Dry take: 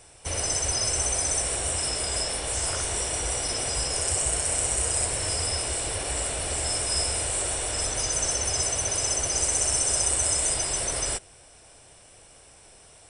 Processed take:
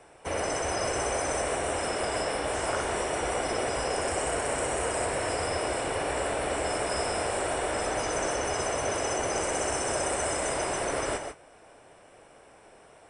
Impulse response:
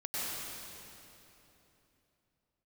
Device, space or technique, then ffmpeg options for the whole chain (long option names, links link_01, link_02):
keyed gated reverb: -filter_complex "[0:a]acrossover=split=180 2200:gain=0.2 1 0.141[link_01][link_02][link_03];[link_01][link_02][link_03]amix=inputs=3:normalize=0,asplit=3[link_04][link_05][link_06];[1:a]atrim=start_sample=2205[link_07];[link_05][link_07]afir=irnorm=-1:irlink=0[link_08];[link_06]apad=whole_len=577302[link_09];[link_08][link_09]sidechaingate=range=-33dB:threshold=-52dB:ratio=16:detection=peak,volume=-10dB[link_10];[link_04][link_10]amix=inputs=2:normalize=0,volume=4dB"